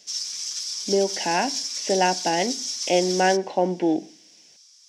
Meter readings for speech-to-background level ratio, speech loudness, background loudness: 3.5 dB, -24.0 LUFS, -27.5 LUFS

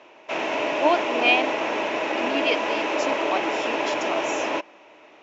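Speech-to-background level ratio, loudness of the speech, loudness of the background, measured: -1.5 dB, -26.5 LUFS, -25.0 LUFS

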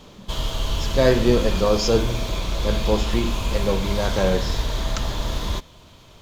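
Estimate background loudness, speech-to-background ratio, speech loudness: -27.0 LUFS, 4.0 dB, -23.0 LUFS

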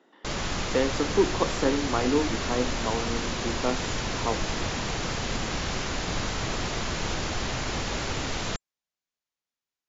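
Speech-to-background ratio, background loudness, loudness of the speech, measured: 1.0 dB, -30.0 LUFS, -29.0 LUFS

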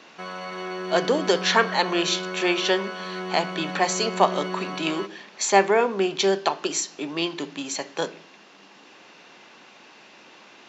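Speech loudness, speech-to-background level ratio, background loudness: -24.0 LUFS, 8.5 dB, -32.5 LUFS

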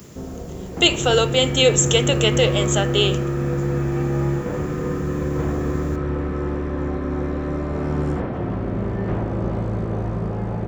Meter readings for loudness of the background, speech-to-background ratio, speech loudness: -24.0 LUFS, 5.5 dB, -18.5 LUFS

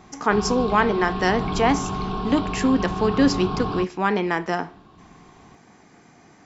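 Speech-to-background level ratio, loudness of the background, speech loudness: 6.0 dB, -28.5 LUFS, -22.5 LUFS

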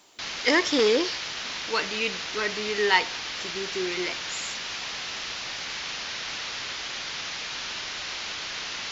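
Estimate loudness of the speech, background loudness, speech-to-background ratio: -26.5 LUFS, -31.5 LUFS, 5.0 dB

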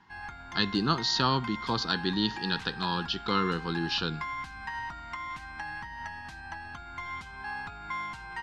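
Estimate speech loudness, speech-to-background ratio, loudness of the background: -29.5 LUFS, 9.5 dB, -39.0 LUFS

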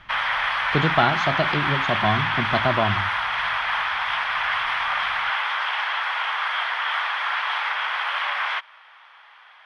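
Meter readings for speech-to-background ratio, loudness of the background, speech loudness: -1.5 dB, -23.0 LUFS, -24.5 LUFS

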